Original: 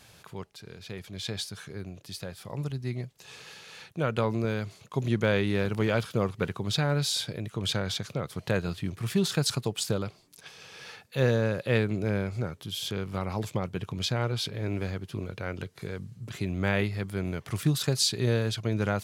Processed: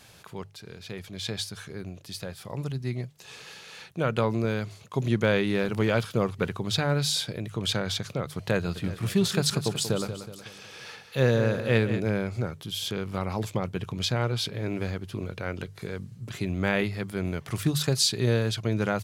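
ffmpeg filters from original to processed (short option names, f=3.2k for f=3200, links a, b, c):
-filter_complex "[0:a]asplit=3[a][b][c];[a]afade=t=out:st=8.75:d=0.02[d];[b]aecho=1:1:185|370|555|740|925:0.299|0.14|0.0659|0.031|0.0146,afade=t=in:st=8.75:d=0.02,afade=t=out:st=11.99:d=0.02[e];[c]afade=t=in:st=11.99:d=0.02[f];[d][e][f]amix=inputs=3:normalize=0,bandreject=f=50:t=h:w=6,bandreject=f=100:t=h:w=6,bandreject=f=150:t=h:w=6,volume=2dB"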